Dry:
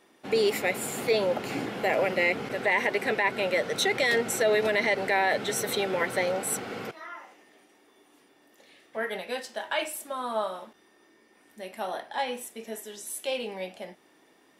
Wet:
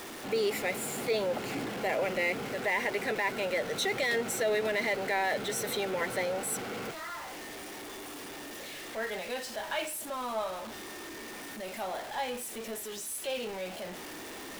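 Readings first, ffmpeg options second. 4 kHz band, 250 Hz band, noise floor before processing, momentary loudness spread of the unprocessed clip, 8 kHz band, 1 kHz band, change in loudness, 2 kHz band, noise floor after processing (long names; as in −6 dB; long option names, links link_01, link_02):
−3.5 dB, −3.0 dB, −62 dBFS, 15 LU, −2.0 dB, −4.0 dB, −5.5 dB, −4.5 dB, −43 dBFS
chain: -af "aeval=exprs='val(0)+0.5*0.0282*sgn(val(0))':channel_layout=same,volume=-6.5dB"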